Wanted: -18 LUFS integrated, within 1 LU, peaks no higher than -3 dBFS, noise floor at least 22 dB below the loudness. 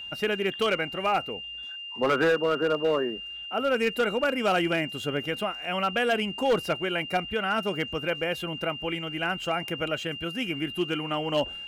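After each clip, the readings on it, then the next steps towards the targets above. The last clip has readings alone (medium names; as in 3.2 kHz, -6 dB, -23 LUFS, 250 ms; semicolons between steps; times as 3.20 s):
clipped samples 1.0%; clipping level -18.0 dBFS; steady tone 2.8 kHz; tone level -36 dBFS; loudness -27.5 LUFS; peak level -18.0 dBFS; loudness target -18.0 LUFS
-> clip repair -18 dBFS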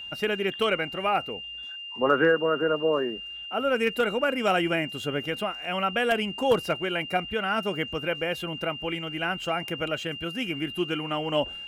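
clipped samples 0.0%; steady tone 2.8 kHz; tone level -36 dBFS
-> band-stop 2.8 kHz, Q 30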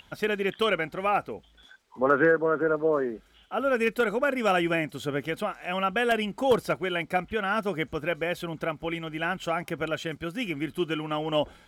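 steady tone not found; loudness -27.5 LUFS; peak level -8.5 dBFS; loudness target -18.0 LUFS
-> trim +9.5 dB; peak limiter -3 dBFS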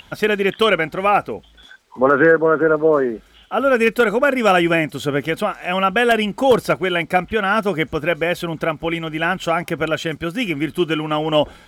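loudness -18.0 LUFS; peak level -3.0 dBFS; noise floor -50 dBFS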